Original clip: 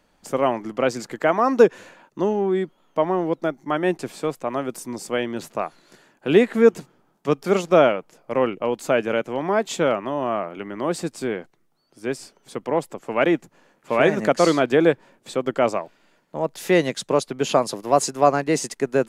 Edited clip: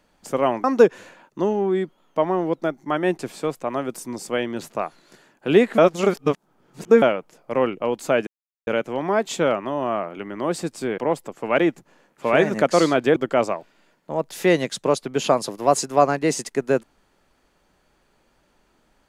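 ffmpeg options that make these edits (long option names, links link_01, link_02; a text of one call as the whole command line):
ffmpeg -i in.wav -filter_complex "[0:a]asplit=7[link_01][link_02][link_03][link_04][link_05][link_06][link_07];[link_01]atrim=end=0.642[link_08];[link_02]atrim=start=1.438:end=6.582[link_09];[link_03]atrim=start=6.578:end=7.822,asetpts=PTS-STARTPTS,areverse[link_10];[link_04]atrim=start=7.818:end=9.07,asetpts=PTS-STARTPTS,afade=type=out:start_time=1.248:duration=0.004:curve=hsin,apad=pad_dur=0.4[link_11];[link_05]atrim=start=9.07:end=11.382,asetpts=PTS-STARTPTS,afade=type=in:duration=0.004:curve=hsin[link_12];[link_06]atrim=start=12.638:end=14.822[link_13];[link_07]atrim=start=15.408[link_14];[link_08][link_09]acrossfade=duration=0.004:curve1=hsin:curve2=hsin[link_15];[link_15][link_10]acrossfade=duration=0.004:curve1=hsin:curve2=hsin[link_16];[link_11][link_12]concat=n=2:v=0:a=1[link_17];[link_16][link_17]acrossfade=duration=0.004:curve1=hsin:curve2=hsin[link_18];[link_18][link_13]acrossfade=duration=0.004:curve1=hsin:curve2=hsin[link_19];[link_19][link_14]acrossfade=duration=0.004:curve1=hsin:curve2=hsin" out.wav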